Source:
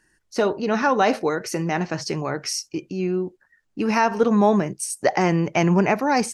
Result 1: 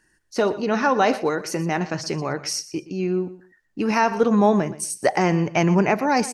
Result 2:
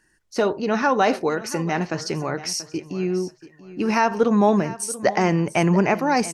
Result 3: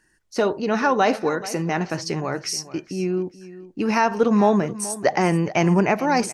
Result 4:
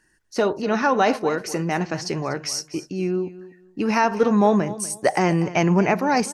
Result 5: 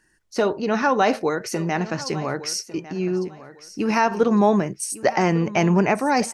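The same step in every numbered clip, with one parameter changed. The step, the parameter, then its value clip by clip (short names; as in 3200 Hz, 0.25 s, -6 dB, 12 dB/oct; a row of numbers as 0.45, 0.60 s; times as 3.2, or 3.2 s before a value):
feedback echo, time: 0.121, 0.684, 0.43, 0.243, 1.152 s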